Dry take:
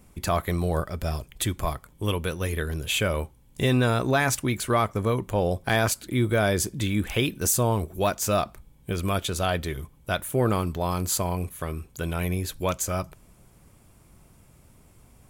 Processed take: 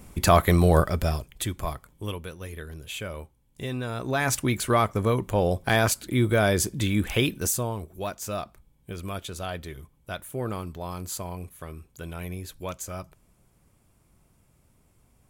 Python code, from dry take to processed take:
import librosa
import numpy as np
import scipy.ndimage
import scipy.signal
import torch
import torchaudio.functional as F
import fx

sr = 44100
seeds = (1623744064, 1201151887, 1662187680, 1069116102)

y = fx.gain(x, sr, db=fx.line((0.91, 7.0), (1.34, -3.0), (1.88, -3.0), (2.31, -10.0), (3.88, -10.0), (4.37, 1.0), (7.32, 1.0), (7.74, -8.0)))